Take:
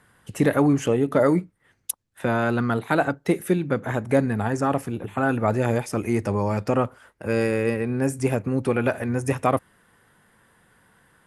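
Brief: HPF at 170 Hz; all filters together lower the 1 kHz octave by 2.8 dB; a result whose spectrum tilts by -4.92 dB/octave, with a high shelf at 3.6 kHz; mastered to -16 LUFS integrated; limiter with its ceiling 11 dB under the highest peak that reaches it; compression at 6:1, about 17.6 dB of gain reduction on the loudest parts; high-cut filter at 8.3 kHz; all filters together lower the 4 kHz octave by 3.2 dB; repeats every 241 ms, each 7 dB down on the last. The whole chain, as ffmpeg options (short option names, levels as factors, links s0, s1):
-af "highpass=170,lowpass=8300,equalizer=f=1000:t=o:g=-4,highshelf=f=3600:g=5,equalizer=f=4000:t=o:g=-7.5,acompressor=threshold=0.0158:ratio=6,alimiter=level_in=2.37:limit=0.0631:level=0:latency=1,volume=0.422,aecho=1:1:241|482|723|964|1205:0.447|0.201|0.0905|0.0407|0.0183,volume=18.8"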